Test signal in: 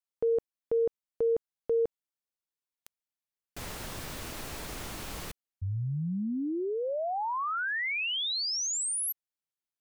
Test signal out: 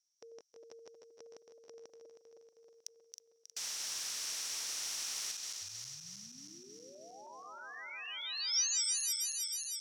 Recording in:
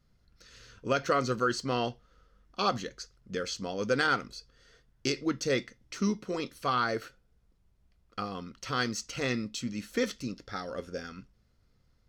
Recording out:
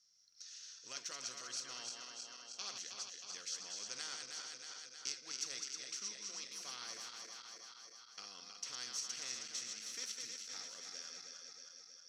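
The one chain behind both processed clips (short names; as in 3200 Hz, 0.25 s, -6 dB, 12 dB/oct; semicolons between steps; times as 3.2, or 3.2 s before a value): regenerating reverse delay 0.158 s, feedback 74%, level -7 dB; band-pass 5700 Hz, Q 16; spectral compressor 2:1; gain +5 dB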